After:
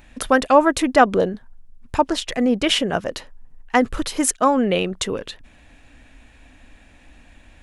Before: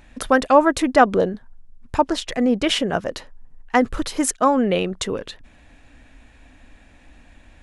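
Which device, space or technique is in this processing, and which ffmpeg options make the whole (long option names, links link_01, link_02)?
presence and air boost: -af "equalizer=frequency=2800:width_type=o:width=0.77:gain=2.5,highshelf=frequency=10000:gain=6.5"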